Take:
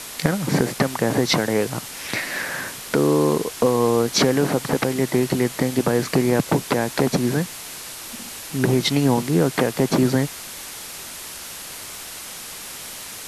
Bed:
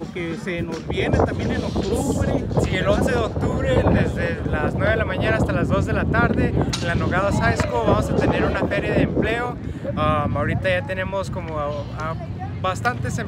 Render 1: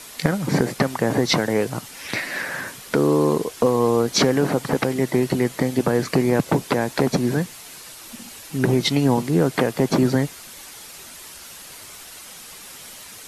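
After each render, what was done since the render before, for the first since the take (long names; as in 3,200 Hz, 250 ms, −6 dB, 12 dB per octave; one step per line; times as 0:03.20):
broadband denoise 7 dB, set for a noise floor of −36 dBFS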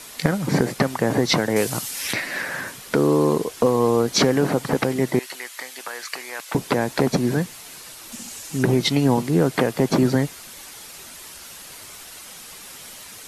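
0:01.56–0:02.13: high-shelf EQ 3,200 Hz +12 dB
0:05.19–0:06.55: high-pass filter 1,400 Hz
0:08.12–0:08.63: parametric band 7,000 Hz +7.5 dB 0.8 octaves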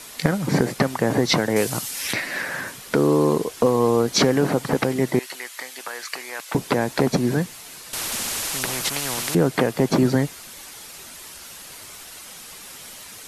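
0:07.93–0:09.35: every bin compressed towards the loudest bin 4 to 1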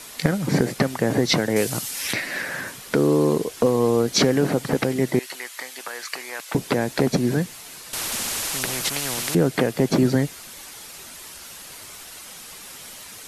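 dynamic equaliser 1,000 Hz, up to −5 dB, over −35 dBFS, Q 1.6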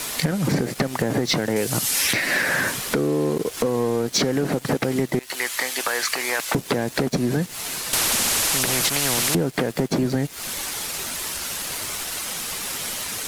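downward compressor 16 to 1, threshold −28 dBFS, peak gain reduction 15.5 dB
leveller curve on the samples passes 3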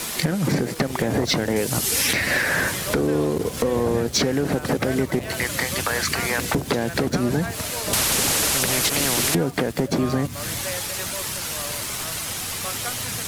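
mix in bed −12 dB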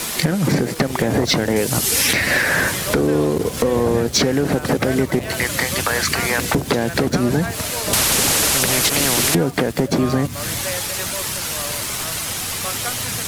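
level +4 dB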